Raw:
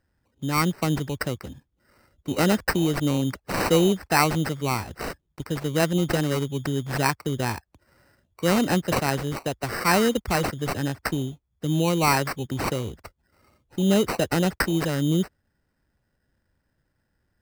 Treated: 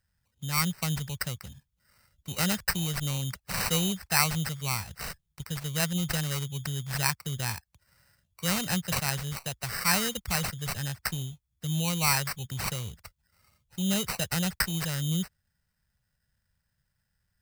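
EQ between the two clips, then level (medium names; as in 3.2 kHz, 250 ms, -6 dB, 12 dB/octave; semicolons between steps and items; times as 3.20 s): amplifier tone stack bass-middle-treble 10-0-10; peaking EQ 180 Hz +13 dB 1.9 oct; treble shelf 5.3 kHz +4 dB; 0.0 dB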